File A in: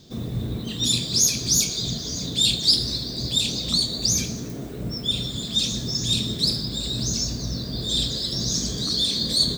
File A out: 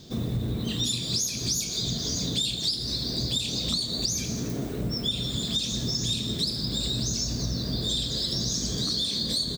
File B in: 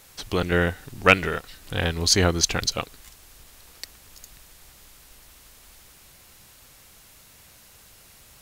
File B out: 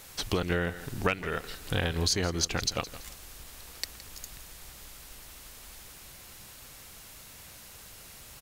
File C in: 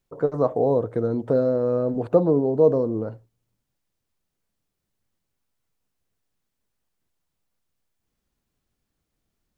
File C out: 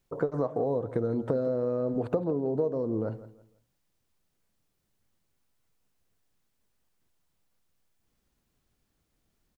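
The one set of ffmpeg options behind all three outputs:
ffmpeg -i in.wav -filter_complex "[0:a]acompressor=threshold=-27dB:ratio=12,asplit=2[link_01][link_02];[link_02]aecho=0:1:166|332|498:0.158|0.046|0.0133[link_03];[link_01][link_03]amix=inputs=2:normalize=0,volume=2.5dB" out.wav

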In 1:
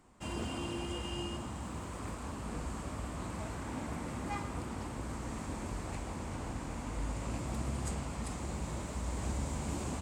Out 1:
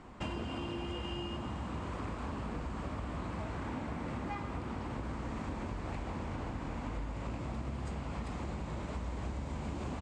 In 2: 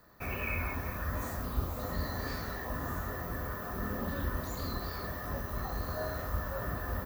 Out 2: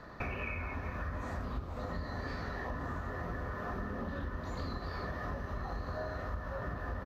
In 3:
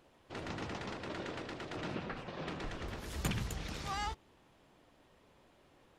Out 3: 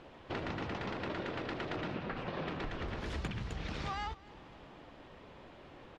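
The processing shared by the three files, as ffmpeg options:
ffmpeg -i in.wav -af "lowpass=3800,acompressor=threshold=-47dB:ratio=10,aecho=1:1:256|512|768|1024|1280:0.0841|0.0496|0.0293|0.0173|0.0102,volume=11.5dB" out.wav

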